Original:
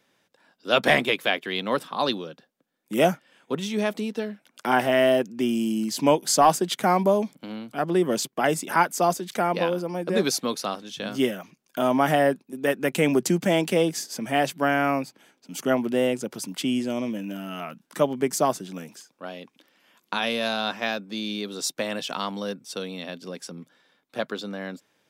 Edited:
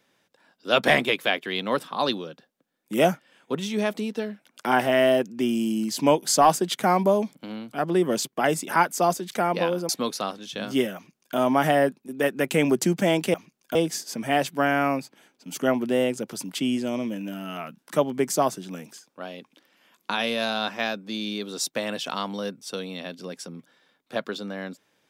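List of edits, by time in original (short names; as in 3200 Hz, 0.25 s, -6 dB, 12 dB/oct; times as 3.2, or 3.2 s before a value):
9.89–10.33 cut
11.39–11.8 copy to 13.78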